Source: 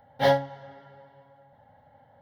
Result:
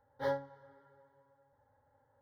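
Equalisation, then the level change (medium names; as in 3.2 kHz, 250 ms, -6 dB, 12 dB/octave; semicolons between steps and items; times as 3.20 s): treble shelf 3.9 kHz -10 dB; static phaser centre 700 Hz, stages 6; -8.5 dB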